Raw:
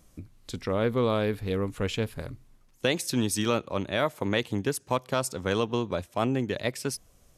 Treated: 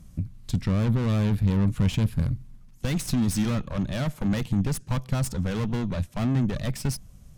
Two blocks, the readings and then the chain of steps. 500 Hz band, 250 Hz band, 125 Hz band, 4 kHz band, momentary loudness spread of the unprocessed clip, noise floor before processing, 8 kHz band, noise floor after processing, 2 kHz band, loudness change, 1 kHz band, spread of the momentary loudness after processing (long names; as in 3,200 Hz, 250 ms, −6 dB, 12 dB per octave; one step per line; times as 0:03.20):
−7.5 dB, +4.5 dB, +9.5 dB, −4.5 dB, 9 LU, −60 dBFS, −1.5 dB, −49 dBFS, −5.0 dB, +2.0 dB, −5.5 dB, 7 LU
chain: tube saturation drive 33 dB, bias 0.7
low shelf with overshoot 260 Hz +12 dB, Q 1.5
level +4.5 dB